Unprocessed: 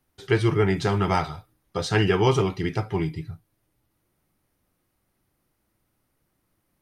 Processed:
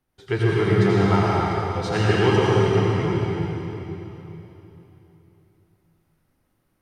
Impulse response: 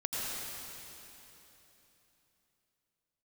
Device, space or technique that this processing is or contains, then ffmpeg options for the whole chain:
swimming-pool hall: -filter_complex "[0:a]asettb=1/sr,asplit=3[a][b][c];[a]atrim=end=2.654[d];[b]atrim=start=2.65:end=3.19,asetpts=PTS-STARTPTS,afade=t=in:d=0.004:c=qsin,afade=t=out:st=0.536:d=0.004:c=qsin,lowpass=5.4k[e];[c]atrim=start=3.186[f];[d][e]acrossfade=d=0.004:c1=hsin:c2=qsin[g];[g][f]acrossfade=d=0.004:c1=qsin:c2=hsin[h];[1:a]atrim=start_sample=2205[i];[h][i]afir=irnorm=-1:irlink=0,highshelf=f=4.3k:g=-6,volume=-2dB"

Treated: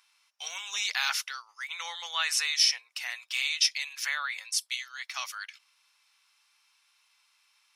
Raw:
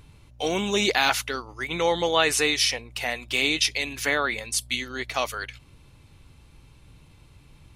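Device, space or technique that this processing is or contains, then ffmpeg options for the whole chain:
headphones lying on a table: -af "highpass=f=1.1k:w=0.5412,highpass=f=1.1k:w=1.3066,equalizer=f=5.4k:t=o:w=0.27:g=10.5,volume=-6dB"

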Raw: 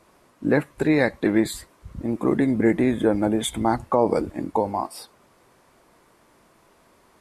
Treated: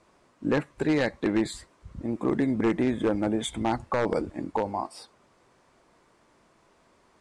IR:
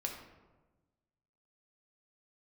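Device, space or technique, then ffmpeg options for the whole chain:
synthesiser wavefolder: -af "aeval=exprs='0.266*(abs(mod(val(0)/0.266+3,4)-2)-1)':c=same,lowpass=f=8.7k:w=0.5412,lowpass=f=8.7k:w=1.3066,volume=-4.5dB"

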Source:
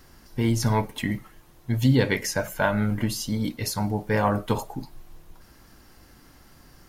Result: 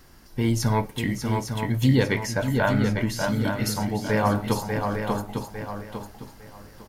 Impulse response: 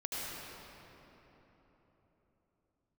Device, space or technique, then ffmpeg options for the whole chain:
ducked delay: -filter_complex "[0:a]asplit=3[a][b][c];[b]adelay=592,volume=-4dB[d];[c]apad=whole_len=329694[e];[d][e]sidechaincompress=threshold=-27dB:ratio=8:attack=7.6:release=255[f];[a][f]amix=inputs=2:normalize=0,asettb=1/sr,asplit=3[g][h][i];[g]atrim=end=2.074[j];[h]atrim=start=2.07:end=3.24,asetpts=PTS-STARTPTS,afade=t=in:d=0.004:c=qsin,afade=t=out:st=1.166:d=0.004:c=qsin,highshelf=f=5.6k:g=-7.5[k];[i]atrim=start=3.236[l];[j][k]acrossfade=d=0.004:c1=hsin:c2=qsin[m];[m][l]acrossfade=d=0.004:c1=qsin:c2=hsin,aecho=1:1:853|1706|2559:0.447|0.103|0.0236"

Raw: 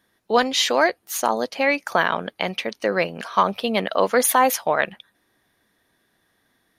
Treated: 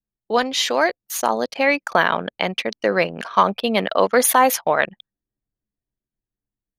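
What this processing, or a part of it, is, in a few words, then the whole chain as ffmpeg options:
voice memo with heavy noise removal: -af "anlmdn=3.98,dynaudnorm=f=500:g=5:m=11.5dB,volume=-1dB"

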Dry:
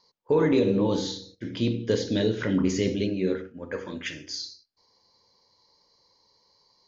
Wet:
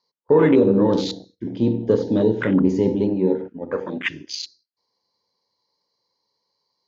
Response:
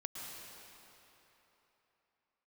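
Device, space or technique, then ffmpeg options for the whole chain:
over-cleaned archive recording: -filter_complex "[0:a]highpass=120,lowpass=6.7k,afwtdn=0.0178,asettb=1/sr,asplit=3[a][b][c];[a]atrim=end=3.404[d];[b]atrim=start=3.4:end=4.3,asetpts=PTS-STARTPTS,afade=t=in:d=0.004:c=qsin,afade=t=out:st=0.896:d=0.004:c=qsin,equalizer=f=1.9k:t=o:w=2.8:g=5[e];[c]atrim=start=4.296[f];[d][e]acrossfade=d=0.004:c1=hsin:c2=qsin[g];[g][f]acrossfade=d=0.004:c1=qsin:c2=hsin,volume=7dB"

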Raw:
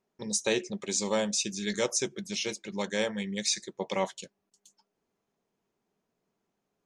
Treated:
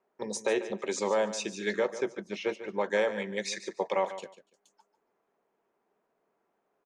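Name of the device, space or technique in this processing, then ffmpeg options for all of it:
DJ mixer with the lows and highs turned down: -filter_complex "[0:a]acrossover=split=340 2100:gain=0.141 1 0.141[a][b][c];[a][b][c]amix=inputs=3:normalize=0,alimiter=level_in=1.5dB:limit=-24dB:level=0:latency=1:release=227,volume=-1.5dB,asettb=1/sr,asplit=3[d][e][f];[d]atrim=end=1.754[g];[e]atrim=start=1.75:end=2.86,asetpts=PTS-STARTPTS,afade=t=in:d=0.004:c=qsin,afade=t=out:st=1.106:d=0.004:c=qsin,aemphasis=mode=reproduction:type=75kf[h];[f]atrim=start=2.856[i];[g][h]acrossfade=d=0.004:c1=hsin:c2=qsin[j];[j][i]acrossfade=d=0.004:c1=qsin:c2=hsin,aecho=1:1:145|290:0.224|0.0448,volume=8dB"

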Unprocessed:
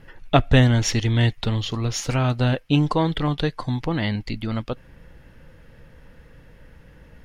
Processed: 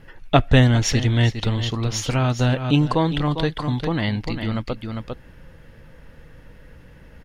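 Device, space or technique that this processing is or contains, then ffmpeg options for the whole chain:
ducked delay: -filter_complex "[0:a]asplit=3[a][b][c];[b]adelay=401,volume=-4.5dB[d];[c]apad=whole_len=337184[e];[d][e]sidechaincompress=threshold=-30dB:ratio=8:attack=35:release=143[f];[a][f]amix=inputs=2:normalize=0,volume=1dB"

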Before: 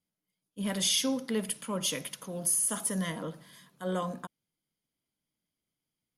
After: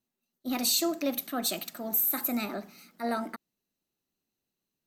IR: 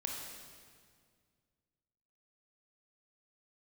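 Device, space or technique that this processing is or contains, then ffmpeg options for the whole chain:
nightcore: -af "asetrate=56007,aresample=44100,volume=1.5dB"

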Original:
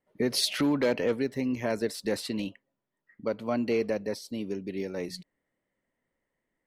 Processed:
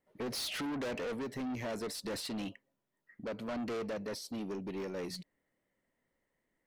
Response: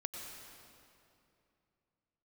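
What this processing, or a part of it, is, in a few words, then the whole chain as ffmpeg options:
saturation between pre-emphasis and de-emphasis: -af "highshelf=f=12k:g=7,asoftclip=type=tanh:threshold=-35dB,highshelf=f=12k:g=-7"

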